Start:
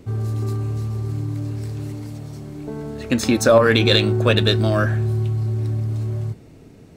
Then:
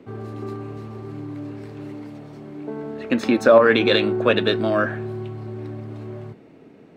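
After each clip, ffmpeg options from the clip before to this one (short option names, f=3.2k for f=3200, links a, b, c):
-filter_complex "[0:a]acrossover=split=180 3300:gain=0.0794 1 0.126[a][b][c];[a][b][c]amix=inputs=3:normalize=0,volume=1dB"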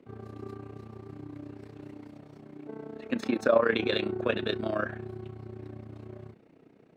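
-af "tremolo=f=30:d=0.788,volume=-7dB"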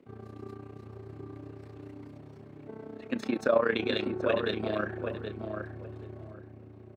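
-filter_complex "[0:a]asplit=2[a][b];[b]adelay=776,lowpass=f=1.4k:p=1,volume=-4.5dB,asplit=2[c][d];[d]adelay=776,lowpass=f=1.4k:p=1,volume=0.23,asplit=2[e][f];[f]adelay=776,lowpass=f=1.4k:p=1,volume=0.23[g];[a][c][e][g]amix=inputs=4:normalize=0,volume=-2dB"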